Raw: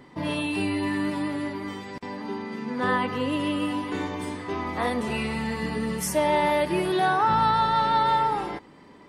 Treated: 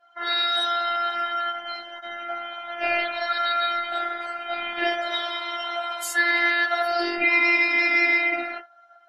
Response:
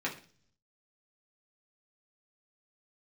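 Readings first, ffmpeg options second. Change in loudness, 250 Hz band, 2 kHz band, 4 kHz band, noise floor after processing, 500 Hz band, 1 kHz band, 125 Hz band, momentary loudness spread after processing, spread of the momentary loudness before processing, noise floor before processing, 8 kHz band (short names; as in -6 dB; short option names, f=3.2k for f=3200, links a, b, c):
+3.0 dB, -9.0 dB, +10.5 dB, +8.5 dB, -53 dBFS, -2.0 dB, -2.5 dB, under -30 dB, 14 LU, 12 LU, -50 dBFS, -1.5 dB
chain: -filter_complex "[1:a]atrim=start_sample=2205,atrim=end_sample=6174,asetrate=74970,aresample=44100[a];[0:a][a]afir=irnorm=-1:irlink=0,aeval=exprs='val(0)*sin(2*PI*1100*n/s)':c=same,afftdn=nr=20:nf=-45,afftfilt=real='hypot(re,im)*cos(PI*b)':imag='0':win_size=512:overlap=0.75,bass=f=250:g=-13,treble=f=4k:g=5,volume=7dB"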